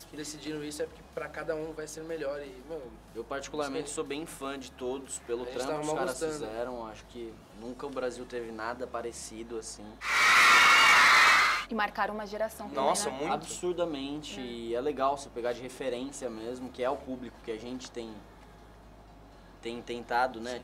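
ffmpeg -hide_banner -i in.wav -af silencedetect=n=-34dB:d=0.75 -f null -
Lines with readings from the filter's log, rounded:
silence_start: 18.12
silence_end: 19.66 | silence_duration: 1.54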